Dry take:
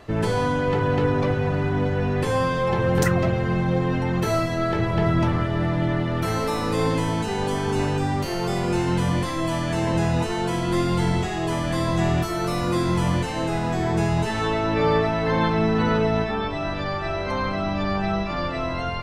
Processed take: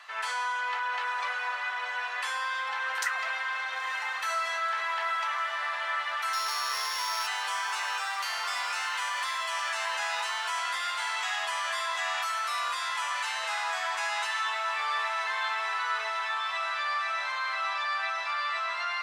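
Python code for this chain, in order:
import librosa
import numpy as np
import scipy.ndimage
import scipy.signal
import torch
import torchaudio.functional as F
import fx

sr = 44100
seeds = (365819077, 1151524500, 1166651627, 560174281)

p1 = fx.sample_sort(x, sr, block=8, at=(6.33, 7.27))
p2 = scipy.signal.sosfilt(scipy.signal.cheby2(4, 60, 310.0, 'highpass', fs=sr, output='sos'), p1)
p3 = fx.high_shelf(p2, sr, hz=9300.0, db=-10.5)
p4 = fx.over_compress(p3, sr, threshold_db=-36.0, ratio=-1.0)
p5 = p3 + (p4 * librosa.db_to_amplitude(-0.5))
p6 = fx.doubler(p5, sr, ms=12.0, db=-11)
p7 = fx.echo_diffused(p6, sr, ms=955, feedback_pct=77, wet_db=-13.0)
y = p7 * librosa.db_to_amplitude(-3.5)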